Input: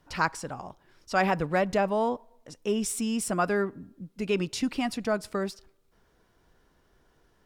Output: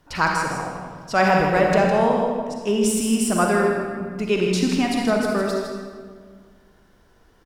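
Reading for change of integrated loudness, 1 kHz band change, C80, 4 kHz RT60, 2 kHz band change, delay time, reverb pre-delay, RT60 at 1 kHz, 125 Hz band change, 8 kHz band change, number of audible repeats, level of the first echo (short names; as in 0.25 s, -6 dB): +8.0 dB, +8.0 dB, 2.0 dB, 1.2 s, +8.5 dB, 0.159 s, 40 ms, 1.6 s, +9.0 dB, +7.5 dB, 1, -7.0 dB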